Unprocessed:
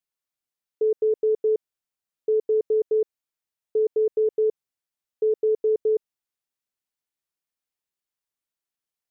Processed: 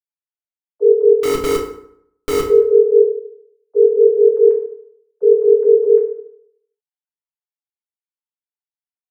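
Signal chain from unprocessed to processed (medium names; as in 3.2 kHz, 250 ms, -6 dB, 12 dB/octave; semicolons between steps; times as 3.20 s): formants replaced by sine waves; 1.23–2.48 s: Schmitt trigger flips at -35.5 dBFS; FDN reverb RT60 0.69 s, low-frequency decay 1.05×, high-frequency decay 0.65×, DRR -2 dB; trim +4.5 dB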